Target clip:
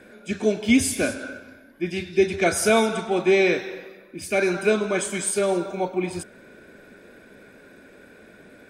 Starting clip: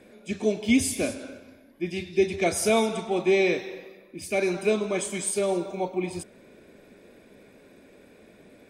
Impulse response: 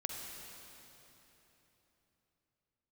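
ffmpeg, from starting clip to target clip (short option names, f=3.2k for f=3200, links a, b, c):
-af "equalizer=f=1.5k:t=o:w=0.32:g=13,volume=3dB"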